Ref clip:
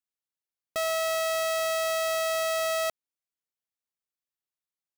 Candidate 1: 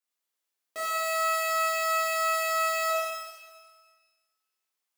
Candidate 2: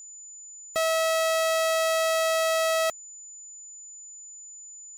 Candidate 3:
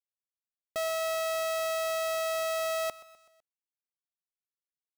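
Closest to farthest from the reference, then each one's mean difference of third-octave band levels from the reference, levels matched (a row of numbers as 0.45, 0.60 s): 3, 1, 2; 1.0, 3.5, 5.0 dB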